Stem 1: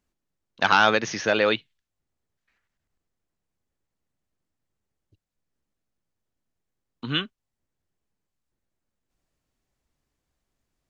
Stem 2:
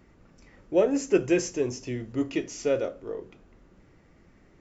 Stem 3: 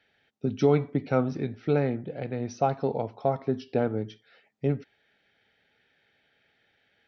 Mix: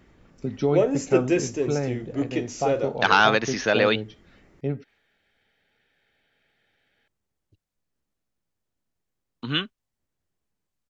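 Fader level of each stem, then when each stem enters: +0.5, +1.0, −1.5 decibels; 2.40, 0.00, 0.00 seconds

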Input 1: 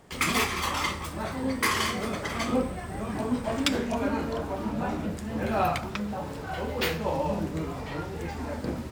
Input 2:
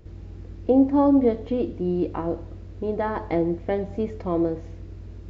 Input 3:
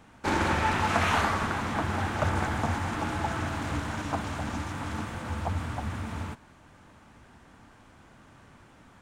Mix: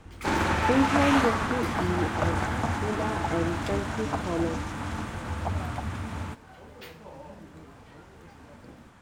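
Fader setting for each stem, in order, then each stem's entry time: −17.0, −6.0, +0.5 decibels; 0.00, 0.00, 0.00 seconds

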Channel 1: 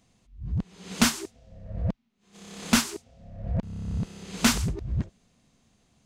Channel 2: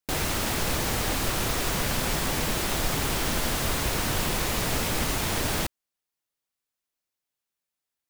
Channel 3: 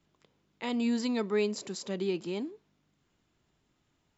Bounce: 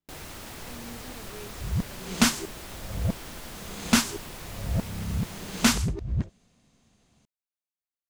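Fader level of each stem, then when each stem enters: +0.5, −14.0, −16.5 decibels; 1.20, 0.00, 0.00 seconds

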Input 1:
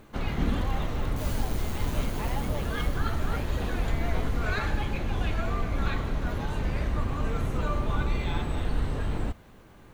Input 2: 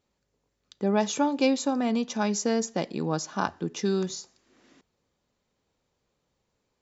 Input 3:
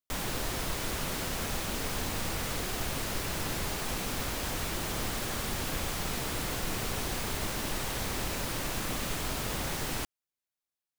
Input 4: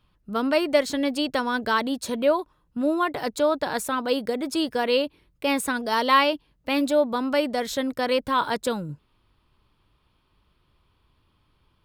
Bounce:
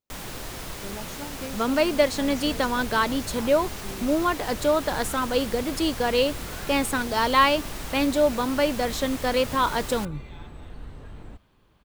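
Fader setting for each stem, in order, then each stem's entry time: −12.5, −15.0, −2.5, 0.0 decibels; 2.05, 0.00, 0.00, 1.25 seconds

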